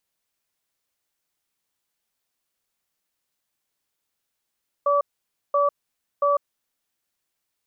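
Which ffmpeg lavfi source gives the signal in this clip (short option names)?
-f lavfi -i "aevalsrc='0.106*(sin(2*PI*573*t)+sin(2*PI*1150*t))*clip(min(mod(t,0.68),0.15-mod(t,0.68))/0.005,0,1)':d=1.73:s=44100"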